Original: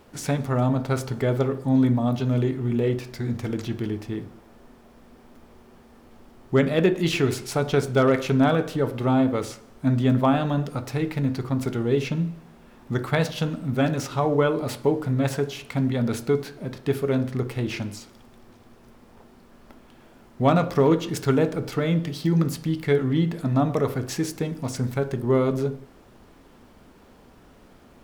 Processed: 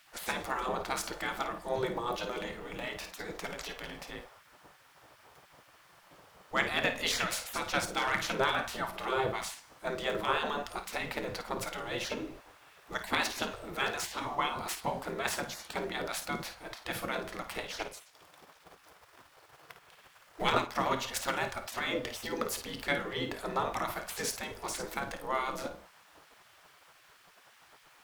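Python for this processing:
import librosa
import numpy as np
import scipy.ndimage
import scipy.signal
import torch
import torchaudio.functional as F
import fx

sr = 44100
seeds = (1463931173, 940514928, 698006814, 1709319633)

y = fx.transient(x, sr, attack_db=8, sustain_db=-6, at=(17.65, 20.74), fade=0.02)
y = fx.room_early_taps(y, sr, ms=(28, 53), db=(-17.0, -10.5))
y = fx.spec_gate(y, sr, threshold_db=-15, keep='weak')
y = y * 10.0 ** (1.0 / 20.0)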